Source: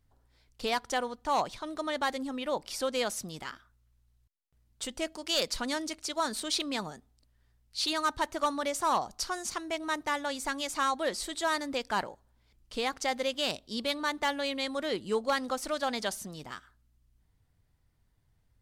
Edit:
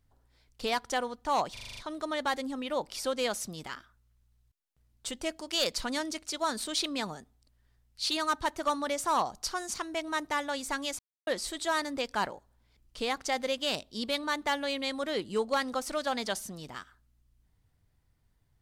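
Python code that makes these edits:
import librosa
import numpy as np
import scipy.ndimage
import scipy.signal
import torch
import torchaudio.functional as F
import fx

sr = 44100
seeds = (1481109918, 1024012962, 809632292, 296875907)

y = fx.edit(x, sr, fx.stutter(start_s=1.53, slice_s=0.04, count=7),
    fx.silence(start_s=10.75, length_s=0.28), tone=tone)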